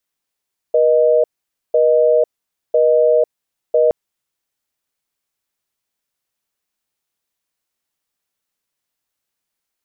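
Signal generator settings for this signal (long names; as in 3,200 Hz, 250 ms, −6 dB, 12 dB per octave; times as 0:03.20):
call progress tone busy tone, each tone −12.5 dBFS 3.17 s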